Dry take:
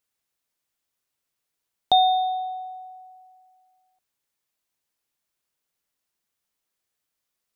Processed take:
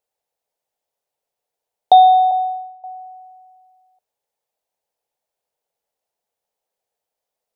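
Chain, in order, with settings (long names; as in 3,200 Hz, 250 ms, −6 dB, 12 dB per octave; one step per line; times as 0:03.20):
0:02.31–0:02.84: downward expander −29 dBFS
flat-topped bell 620 Hz +14 dB 1.3 octaves
level −4 dB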